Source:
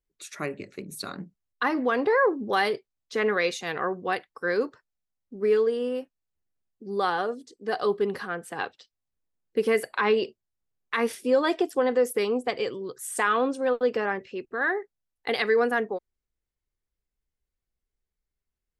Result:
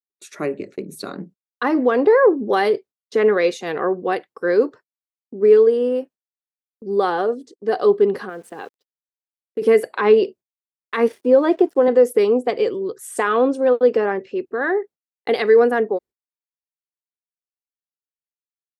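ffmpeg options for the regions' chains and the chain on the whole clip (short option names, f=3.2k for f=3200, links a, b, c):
-filter_complex "[0:a]asettb=1/sr,asplit=3[a][b][c];[a]atrim=end=8.294[d];[b]atrim=start=8.29:end=9.62,asetpts=PTS-STARTPTS,afade=t=in:d=0.004:c=qsin,afade=t=out:st=1.326:d=0.004:c=qsin,highpass=83,acompressor=threshold=-47dB:ratio=1.5:attack=3.2:release=140:knee=1:detection=peak,aeval=exprs='val(0)*gte(abs(val(0)),0.00251)':c=same[e];[c]atrim=start=9.616[f];[d][e]acrossfade=d=0.004:c1=hsin:c2=qsin[g];[g][f]acrossfade=d=0.004:c1=qsin:c2=hsin,asettb=1/sr,asplit=3[h][i][j];[h]atrim=end=11.084[k];[i]atrim=start=11.08:end=11.88,asetpts=PTS-STARTPTS,afade=t=in:d=0.004:c=qsin,afade=t=out:st=0.796:d=0.004:c=qsin,highpass=f=100:w=0.5412,highpass=f=100:w=1.3066,highshelf=f=3.6k:g=-11.5,aeval=exprs='sgn(val(0))*max(abs(val(0))-0.00211,0)':c=same[l];[j]atrim=start=11.876[m];[k][l]acrossfade=d=0.004:c1=hsin:c2=qsin[n];[n][m]acrossfade=d=0.004:c1=qsin:c2=hsin,highpass=90,agate=range=-33dB:threshold=-48dB:ratio=16:detection=peak,equalizer=f=390:t=o:w=2.1:g=10.5"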